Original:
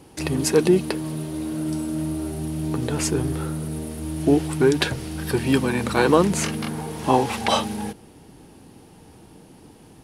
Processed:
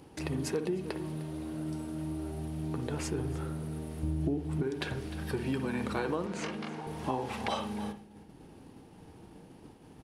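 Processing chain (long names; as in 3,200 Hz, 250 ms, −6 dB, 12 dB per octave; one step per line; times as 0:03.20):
0:06.26–0:06.87: band-pass filter 220–6,300 Hz
single-tap delay 304 ms −18.5 dB
downward expander −36 dBFS
0:04.03–0:04.63: low-shelf EQ 430 Hz +11.5 dB
upward compression, threshold −26 dBFS
high-shelf EQ 4,800 Hz −8.5 dB
convolution reverb, pre-delay 53 ms, DRR 10 dB
downward compressor 12 to 1, threshold −19 dBFS, peak gain reduction 15.5 dB
level −9 dB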